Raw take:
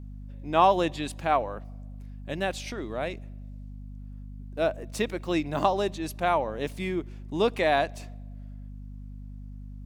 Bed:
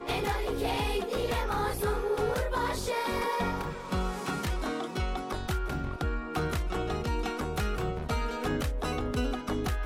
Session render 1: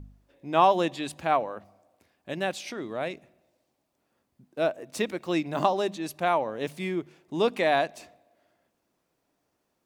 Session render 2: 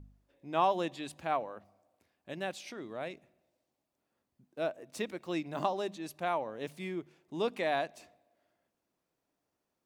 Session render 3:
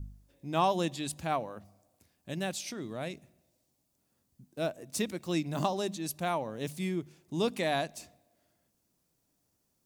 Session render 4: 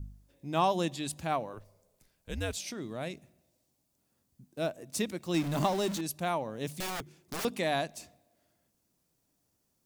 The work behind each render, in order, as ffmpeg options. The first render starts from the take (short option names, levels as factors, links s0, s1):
-af "bandreject=f=50:t=h:w=4,bandreject=f=100:t=h:w=4,bandreject=f=150:t=h:w=4,bandreject=f=200:t=h:w=4,bandreject=f=250:t=h:w=4"
-af "volume=0.398"
-af "bass=f=250:g=12,treble=f=4000:g=13"
-filter_complex "[0:a]asettb=1/sr,asplit=3[s0][s1][s2];[s0]atrim=end=1.534[s3];[s1]atrim=start=1.53:end=2.57,asetpts=PTS-STARTPTS,afade=t=in:d=0.004:c=qsin,afade=t=out:st=1.036:d=0.004:c=qsin,afreqshift=-100[s4];[s2]atrim=start=2.566[s5];[s3][s4]acrossfade=d=0.004:c1=hsin:c2=qsin[s6];[s6][s5]acrossfade=d=0.004:c1=qsin:c2=hsin,asettb=1/sr,asplit=3[s7][s8][s9];[s7]atrim=end=5.344[s10];[s8]atrim=start=5.34:end=6.01,asetpts=PTS-STARTPTS,afade=t=in:d=0.004:c=qsin,afade=t=out:st=0.666:d=0.004:c=qsin,aeval=exprs='val(0)+0.5*0.0188*sgn(val(0))':c=same[s11];[s9]atrim=start=6.006[s12];[s10][s11]acrossfade=d=0.004:c1=hsin:c2=qsin[s13];[s13][s12]acrossfade=d=0.004:c1=qsin:c2=hsin,asettb=1/sr,asplit=3[s14][s15][s16];[s14]atrim=end=6.804[s17];[s15]atrim=start=6.8:end=7.45,asetpts=PTS-STARTPTS,afade=t=in:d=0.004:c=qsin,afade=t=out:st=0.646:d=0.004:c=qsin,aeval=exprs='(mod(37.6*val(0)+1,2)-1)/37.6':c=same[s18];[s16]atrim=start=7.446[s19];[s17][s18]acrossfade=d=0.004:c1=hsin:c2=qsin[s20];[s20][s19]acrossfade=d=0.004:c1=qsin:c2=hsin"